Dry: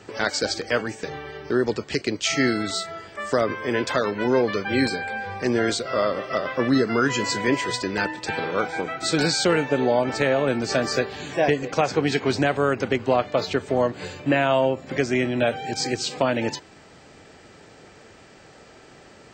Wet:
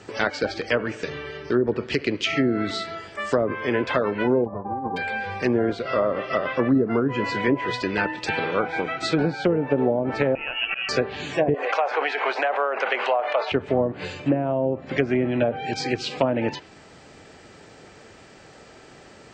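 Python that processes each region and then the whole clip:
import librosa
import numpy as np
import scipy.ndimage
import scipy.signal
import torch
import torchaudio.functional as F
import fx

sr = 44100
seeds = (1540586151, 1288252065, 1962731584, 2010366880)

y = fx.chain(x, sr, fx.notch(hz=790.0, q=8.4),
    fx.echo_bbd(ms=66, stages=2048, feedback_pct=71, wet_db=-19.5), at=(0.72, 2.95))
y = fx.envelope_flatten(y, sr, power=0.1, at=(4.44, 4.96), fade=0.02)
y = fx.ellip_lowpass(y, sr, hz=920.0, order=4, stop_db=70, at=(4.44, 4.96), fade=0.02)
y = fx.over_compress(y, sr, threshold_db=-31.0, ratio=-1.0, at=(4.44, 4.96), fade=0.02)
y = fx.chain(y, sr, fx.low_shelf(hz=150.0, db=-10.5),
    fx.auto_swell(attack_ms=194.0),
    fx.freq_invert(carrier_hz=3100), at=(10.35, 10.89))
y = fx.chain(y, sr, fx.highpass(hz=610.0, slope=24),
    fx.env_flatten(amount_pct=70), at=(11.54, 13.52))
y = fx.env_lowpass_down(y, sr, base_hz=500.0, full_db=-15.5)
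y = fx.dynamic_eq(y, sr, hz=2700.0, q=2.0, threshold_db=-48.0, ratio=4.0, max_db=5)
y = F.gain(torch.from_numpy(y), 1.0).numpy()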